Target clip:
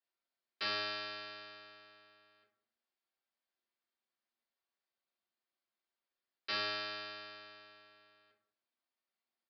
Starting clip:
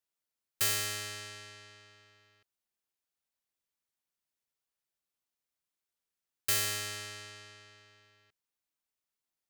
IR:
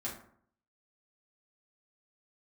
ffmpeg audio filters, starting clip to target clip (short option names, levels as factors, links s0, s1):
-filter_complex "[0:a]highpass=310[s0];[1:a]atrim=start_sample=2205[s1];[s0][s1]afir=irnorm=-1:irlink=0,aresample=11025,aresample=44100"